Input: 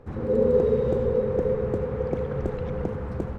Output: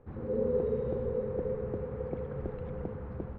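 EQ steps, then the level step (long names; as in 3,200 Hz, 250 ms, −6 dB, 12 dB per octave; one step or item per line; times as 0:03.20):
high-frequency loss of the air 300 metres
−8.5 dB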